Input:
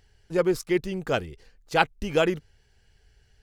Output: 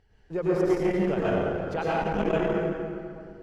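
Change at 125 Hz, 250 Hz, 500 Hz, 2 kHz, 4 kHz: +3.0, +2.5, +1.0, -4.5, -9.5 dB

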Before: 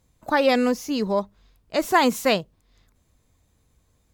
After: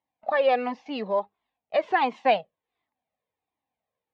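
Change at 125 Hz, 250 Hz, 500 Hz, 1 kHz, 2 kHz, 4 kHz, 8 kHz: under -10 dB, -11.5 dB, -2.0 dB, -0.5 dB, -4.0 dB, -8.0 dB, under -30 dB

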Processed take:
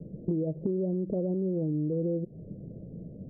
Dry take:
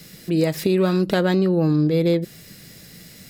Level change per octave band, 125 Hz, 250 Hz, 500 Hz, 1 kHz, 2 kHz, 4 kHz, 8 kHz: -10.0 dB, -10.0 dB, -11.0 dB, -24.5 dB, under -40 dB, under -40 dB, n/a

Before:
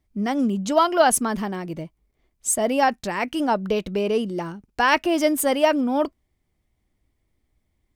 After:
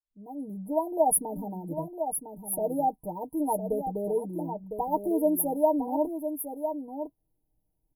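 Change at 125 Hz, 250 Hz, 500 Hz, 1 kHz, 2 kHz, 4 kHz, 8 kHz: -6.5 dB, -6.5 dB, -5.5 dB, -7.5 dB, under -40 dB, under -40 dB, -5.5 dB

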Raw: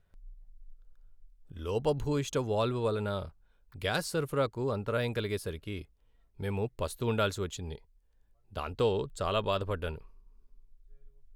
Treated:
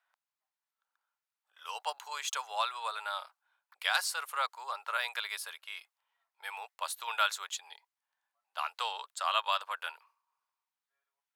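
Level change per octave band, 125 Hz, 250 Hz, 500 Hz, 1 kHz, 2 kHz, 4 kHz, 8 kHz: under -40 dB, under -40 dB, -15.5 dB, +3.5 dB, +4.5 dB, +4.5 dB, +4.5 dB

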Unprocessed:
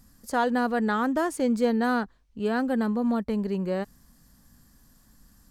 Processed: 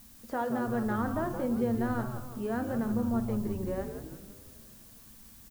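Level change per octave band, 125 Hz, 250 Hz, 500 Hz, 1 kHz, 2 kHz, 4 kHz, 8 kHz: +2.5 dB, -5.0 dB, -6.0 dB, -7.5 dB, -9.5 dB, under -10 dB, -6.5 dB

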